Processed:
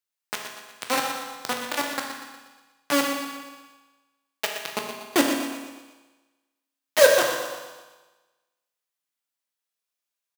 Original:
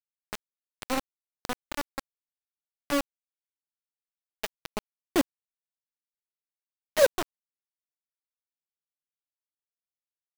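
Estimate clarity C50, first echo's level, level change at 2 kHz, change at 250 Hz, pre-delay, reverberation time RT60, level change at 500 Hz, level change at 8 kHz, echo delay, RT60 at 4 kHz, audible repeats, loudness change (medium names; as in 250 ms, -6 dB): 2.5 dB, -9.5 dB, +10.0 dB, +4.5 dB, 14 ms, 1.3 s, +6.0 dB, +10.0 dB, 120 ms, 1.4 s, 4, +5.5 dB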